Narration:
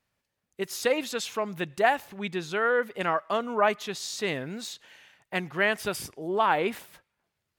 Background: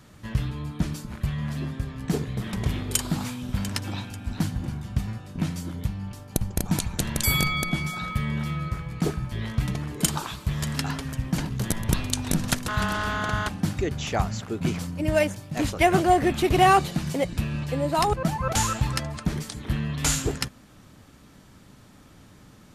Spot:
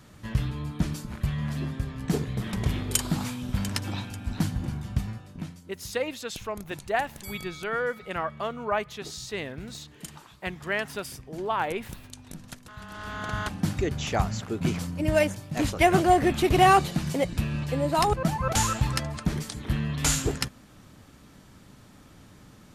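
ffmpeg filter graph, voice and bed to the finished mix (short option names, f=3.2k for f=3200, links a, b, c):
-filter_complex "[0:a]adelay=5100,volume=-4dB[a];[1:a]volume=17dB,afade=t=out:st=4.91:d=0.7:silence=0.133352,afade=t=in:st=12.86:d=0.85:silence=0.133352[b];[a][b]amix=inputs=2:normalize=0"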